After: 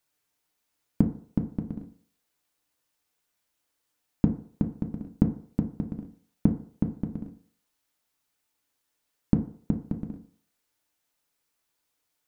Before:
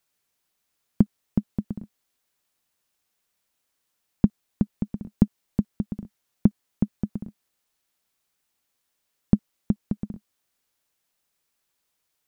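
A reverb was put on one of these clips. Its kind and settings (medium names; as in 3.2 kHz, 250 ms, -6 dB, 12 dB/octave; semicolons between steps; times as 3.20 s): FDN reverb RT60 0.53 s, low-frequency decay 0.8×, high-frequency decay 0.4×, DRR 3.5 dB; trim -2.5 dB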